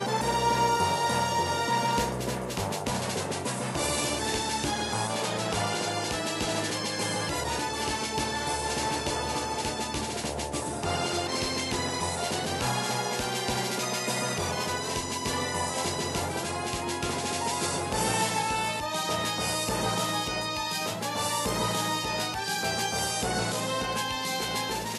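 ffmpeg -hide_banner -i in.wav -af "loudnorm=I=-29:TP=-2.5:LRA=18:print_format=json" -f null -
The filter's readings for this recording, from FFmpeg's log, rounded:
"input_i" : "-28.6",
"input_tp" : "-13.4",
"input_lra" : "1.7",
"input_thresh" : "-38.6",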